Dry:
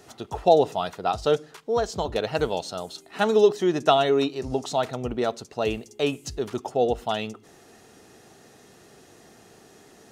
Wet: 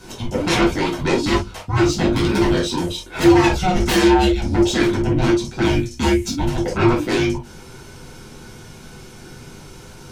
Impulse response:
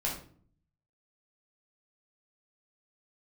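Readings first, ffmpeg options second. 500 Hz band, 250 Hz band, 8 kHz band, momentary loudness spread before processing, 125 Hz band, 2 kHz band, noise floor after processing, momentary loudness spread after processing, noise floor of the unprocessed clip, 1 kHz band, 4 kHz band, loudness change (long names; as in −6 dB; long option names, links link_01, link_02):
+2.0 dB, +13.5 dB, +11.5 dB, 12 LU, +15.0 dB, +11.5 dB, −40 dBFS, 8 LU, −53 dBFS, +3.5 dB, +7.5 dB, +6.5 dB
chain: -filter_complex "[0:a]aeval=exprs='0.631*sin(PI/2*8.91*val(0)/0.631)':channel_layout=same[link_01];[1:a]atrim=start_sample=2205,atrim=end_sample=3969,asetrate=52920,aresample=44100[link_02];[link_01][link_02]afir=irnorm=-1:irlink=0,afreqshift=-350,volume=-13.5dB"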